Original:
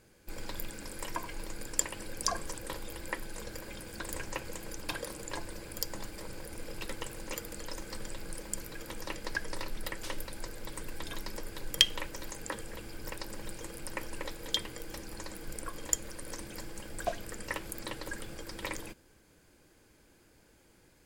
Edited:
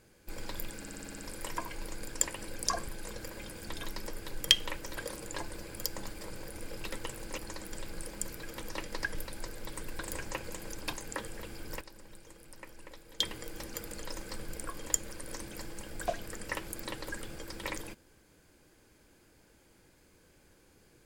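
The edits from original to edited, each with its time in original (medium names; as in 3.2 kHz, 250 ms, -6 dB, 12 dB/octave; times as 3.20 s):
0.78 s: stutter 0.06 s, 8 plays
2.46–3.19 s: delete
4.00–4.94 s: swap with 10.99–12.27 s
7.35–8.04 s: swap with 15.08–15.42 s
9.47–10.15 s: delete
13.15–14.54 s: gain -11 dB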